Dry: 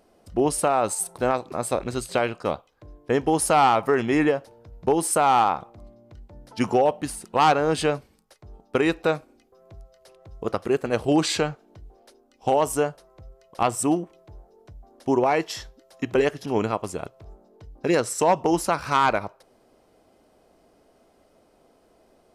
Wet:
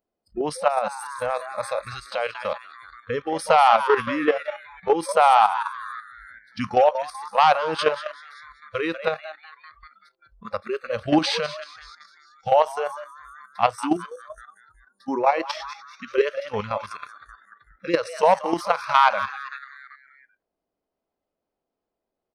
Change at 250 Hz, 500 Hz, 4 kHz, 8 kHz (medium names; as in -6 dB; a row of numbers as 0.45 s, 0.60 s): -4.0 dB, 0.0 dB, +2.0 dB, -11.0 dB